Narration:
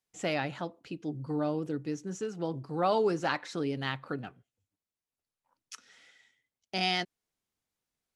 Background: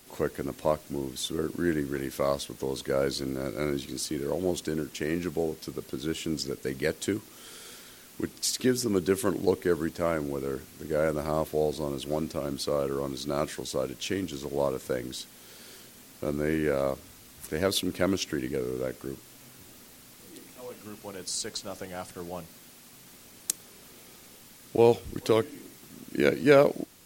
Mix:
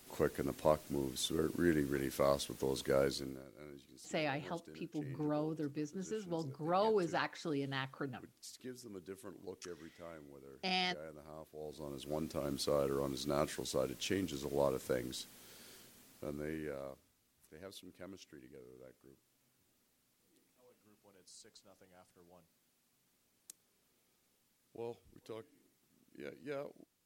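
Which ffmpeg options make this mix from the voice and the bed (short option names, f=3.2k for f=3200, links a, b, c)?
-filter_complex "[0:a]adelay=3900,volume=-6dB[a];[1:a]volume=12.5dB,afade=t=out:st=2.97:d=0.48:silence=0.11885,afade=t=in:st=11.57:d=1.01:silence=0.133352,afade=t=out:st=14.97:d=2.16:silence=0.112202[b];[a][b]amix=inputs=2:normalize=0"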